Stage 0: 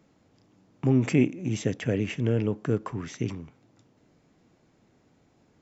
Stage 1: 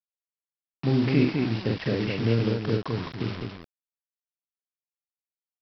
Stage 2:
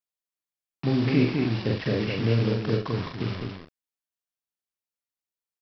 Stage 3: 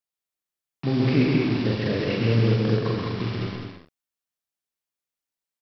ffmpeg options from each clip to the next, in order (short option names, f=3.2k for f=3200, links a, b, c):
-af "aresample=11025,acrusher=bits=5:mix=0:aa=0.000001,aresample=44100,aecho=1:1:43.73|207:0.631|0.631,volume=-1.5dB"
-filter_complex "[0:a]asplit=2[a][b];[b]adelay=42,volume=-8dB[c];[a][c]amix=inputs=2:normalize=0"
-af "aecho=1:1:131.2|201.2:0.708|0.501"